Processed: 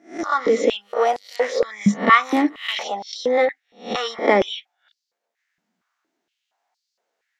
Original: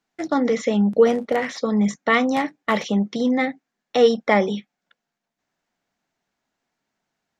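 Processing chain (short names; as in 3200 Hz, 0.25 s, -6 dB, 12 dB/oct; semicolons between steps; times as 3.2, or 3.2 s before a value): spectral swells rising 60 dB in 0.35 s; stepped high-pass 4.3 Hz 200–4600 Hz; gain -1.5 dB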